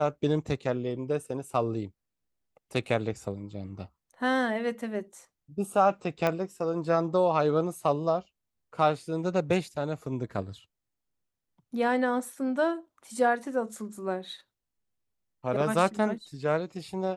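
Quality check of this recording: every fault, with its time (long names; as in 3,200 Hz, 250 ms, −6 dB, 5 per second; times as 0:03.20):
0:06.27: click −14 dBFS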